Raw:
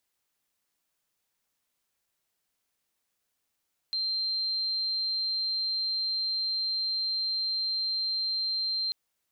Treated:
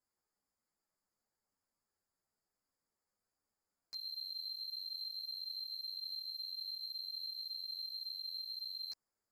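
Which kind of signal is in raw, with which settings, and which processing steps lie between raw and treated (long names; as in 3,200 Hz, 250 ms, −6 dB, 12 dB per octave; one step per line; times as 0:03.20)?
tone sine 4,150 Hz −27 dBFS 4.99 s
adaptive Wiener filter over 15 samples
drawn EQ curve 2,400 Hz 0 dB, 3,400 Hz −22 dB, 4,800 Hz +13 dB
string-ensemble chorus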